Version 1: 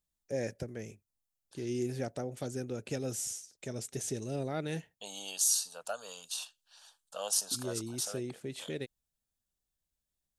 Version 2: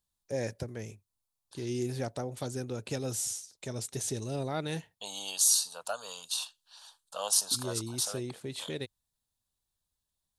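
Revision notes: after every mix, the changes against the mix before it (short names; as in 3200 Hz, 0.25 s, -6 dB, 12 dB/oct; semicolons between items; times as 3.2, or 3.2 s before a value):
master: add fifteen-band EQ 100 Hz +6 dB, 1000 Hz +8 dB, 4000 Hz +7 dB, 10000 Hz +5 dB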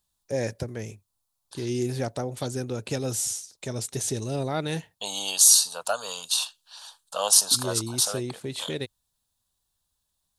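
first voice +5.5 dB; second voice +8.5 dB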